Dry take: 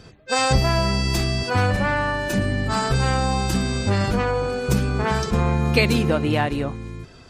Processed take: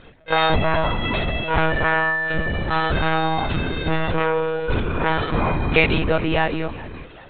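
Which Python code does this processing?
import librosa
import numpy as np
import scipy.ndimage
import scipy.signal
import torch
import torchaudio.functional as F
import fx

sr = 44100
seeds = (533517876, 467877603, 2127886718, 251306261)

y = fx.low_shelf(x, sr, hz=440.0, db=-6.5)
y = fx.echo_feedback(y, sr, ms=399, feedback_pct=46, wet_db=-20)
y = fx.lpc_monotone(y, sr, seeds[0], pitch_hz=160.0, order=16)
y = y * librosa.db_to_amplitude(4.5)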